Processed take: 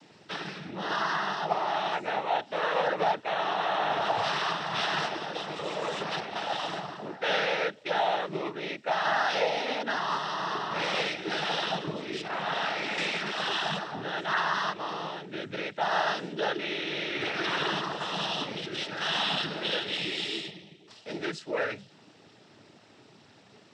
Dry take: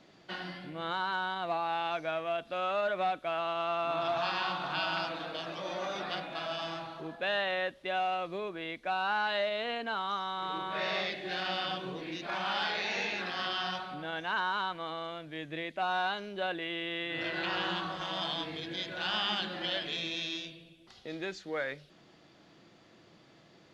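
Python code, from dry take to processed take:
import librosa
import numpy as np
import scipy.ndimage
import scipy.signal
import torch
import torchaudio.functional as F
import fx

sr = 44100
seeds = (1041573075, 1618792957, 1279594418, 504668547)

y = fx.noise_vocoder(x, sr, seeds[0], bands=12)
y = fx.high_shelf(y, sr, hz=4100.0, db=-11.0, at=(12.28, 12.98))
y = fx.notch(y, sr, hz=5900.0, q=9.2, at=(19.22, 20.56))
y = F.gain(torch.from_numpy(y), 4.5).numpy()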